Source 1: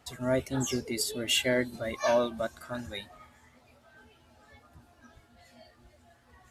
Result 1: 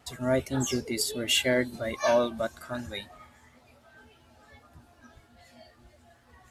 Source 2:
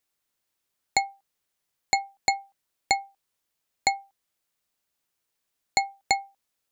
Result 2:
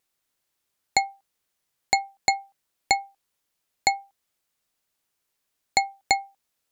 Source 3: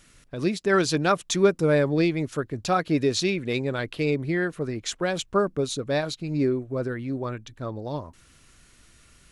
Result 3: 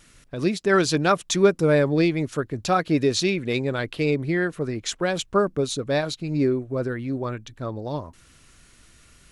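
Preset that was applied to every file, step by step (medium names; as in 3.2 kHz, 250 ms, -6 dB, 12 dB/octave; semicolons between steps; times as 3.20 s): vibrato 0.79 Hz 5.2 cents; trim +2 dB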